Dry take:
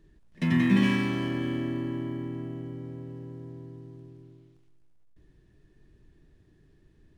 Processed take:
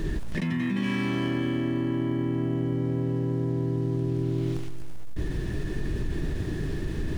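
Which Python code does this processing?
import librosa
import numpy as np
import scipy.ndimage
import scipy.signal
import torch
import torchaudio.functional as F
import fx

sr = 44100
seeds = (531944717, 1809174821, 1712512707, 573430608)

y = fx.env_flatten(x, sr, amount_pct=100)
y = y * librosa.db_to_amplitude(-9.0)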